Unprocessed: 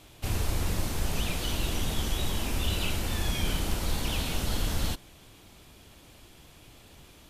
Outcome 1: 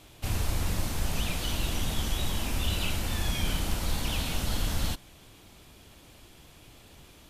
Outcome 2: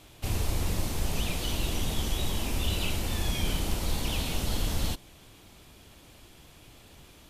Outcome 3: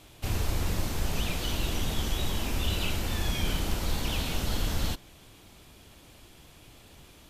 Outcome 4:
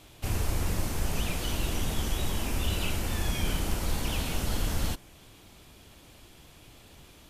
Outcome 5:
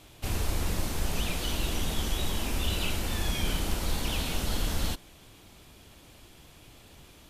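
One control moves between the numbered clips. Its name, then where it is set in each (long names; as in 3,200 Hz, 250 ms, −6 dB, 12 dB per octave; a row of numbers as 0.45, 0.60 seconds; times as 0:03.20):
dynamic equaliser, frequency: 400, 1,500, 9,700, 3,800, 110 Hertz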